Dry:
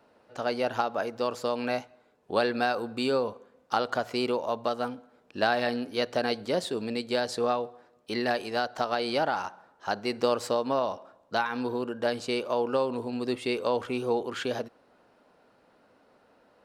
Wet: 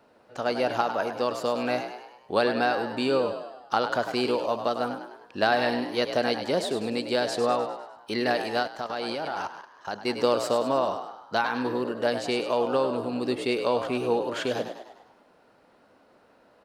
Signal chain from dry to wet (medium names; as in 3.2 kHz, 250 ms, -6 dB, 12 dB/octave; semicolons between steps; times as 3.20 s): 2.44–3.77 s: treble shelf 6.1 kHz -5.5 dB; frequency-shifting echo 101 ms, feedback 51%, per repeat +59 Hz, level -9 dB; 8.63–10.06 s: level held to a coarse grid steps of 11 dB; trim +2 dB